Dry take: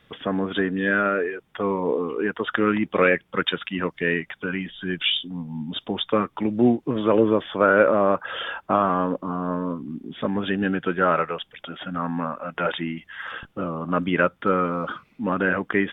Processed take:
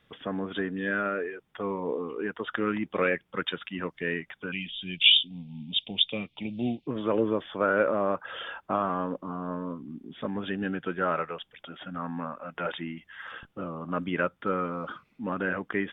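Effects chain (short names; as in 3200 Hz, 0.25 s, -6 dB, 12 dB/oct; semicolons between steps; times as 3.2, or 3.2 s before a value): 4.52–6.87 EQ curve 190 Hz 0 dB, 380 Hz -9 dB, 700 Hz -4 dB, 1100 Hz -19 dB, 1600 Hz -18 dB, 2400 Hz +11 dB, 4200 Hz +13 dB, 7000 Hz -7 dB; gain -7.5 dB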